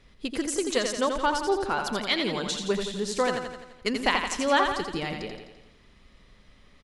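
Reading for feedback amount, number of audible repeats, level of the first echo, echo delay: 56%, 6, −6.0 dB, 85 ms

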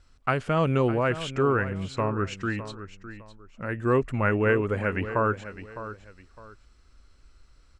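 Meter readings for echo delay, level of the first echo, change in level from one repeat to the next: 608 ms, −13.0 dB, −11.0 dB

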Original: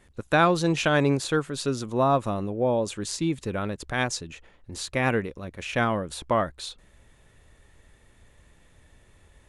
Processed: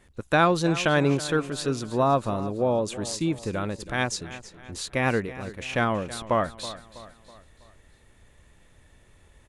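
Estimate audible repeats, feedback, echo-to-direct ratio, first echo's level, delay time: 3, 47%, −14.5 dB, −15.5 dB, 325 ms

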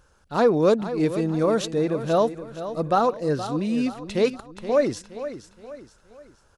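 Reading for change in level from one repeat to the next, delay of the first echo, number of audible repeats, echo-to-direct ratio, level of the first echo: −7.5 dB, 472 ms, 3, −11.0 dB, −12.0 dB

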